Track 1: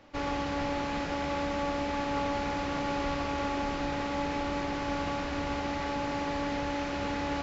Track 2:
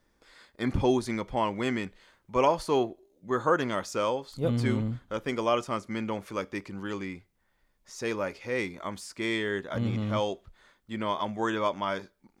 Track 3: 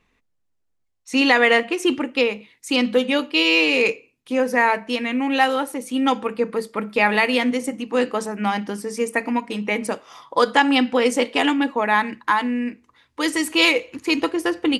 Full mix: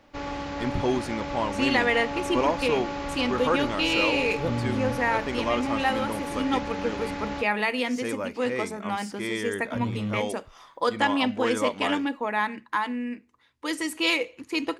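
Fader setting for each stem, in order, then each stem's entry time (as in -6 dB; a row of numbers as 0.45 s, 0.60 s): -1.0 dB, -1.0 dB, -7.5 dB; 0.00 s, 0.00 s, 0.45 s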